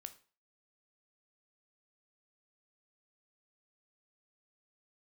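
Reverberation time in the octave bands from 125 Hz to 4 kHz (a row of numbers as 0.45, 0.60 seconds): 0.35, 0.35, 0.40, 0.40, 0.35, 0.35 seconds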